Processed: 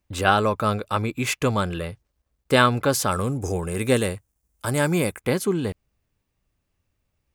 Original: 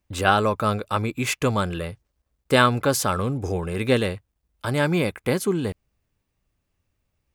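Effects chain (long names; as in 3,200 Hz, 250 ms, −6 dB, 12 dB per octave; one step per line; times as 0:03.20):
0:03.11–0:05.21: high shelf with overshoot 5,400 Hz +8.5 dB, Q 1.5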